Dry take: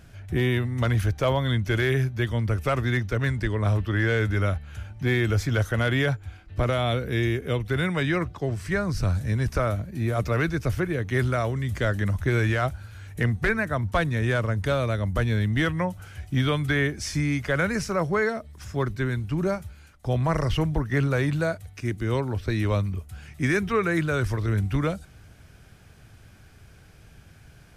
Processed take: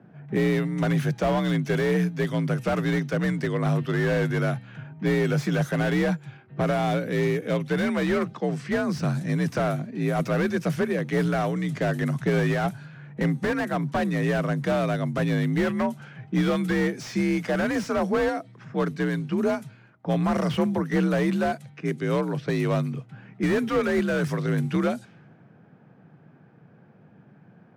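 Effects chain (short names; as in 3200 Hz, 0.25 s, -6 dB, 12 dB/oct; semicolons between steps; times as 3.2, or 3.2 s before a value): HPF 110 Hz 12 dB/oct; low-pass opened by the level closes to 920 Hz, open at -23.5 dBFS; frequency shift +47 Hz; slew limiter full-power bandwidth 52 Hz; gain +2 dB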